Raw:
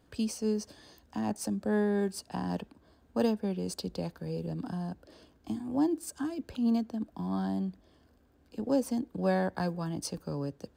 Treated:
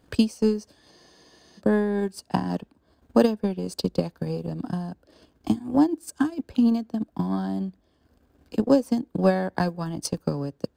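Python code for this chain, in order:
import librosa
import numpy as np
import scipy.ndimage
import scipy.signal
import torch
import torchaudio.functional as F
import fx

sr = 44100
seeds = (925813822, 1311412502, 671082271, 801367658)

y = fx.transient(x, sr, attack_db=11, sustain_db=-7)
y = fx.spec_freeze(y, sr, seeds[0], at_s=0.94, hold_s=0.66)
y = F.gain(torch.from_numpy(y), 3.5).numpy()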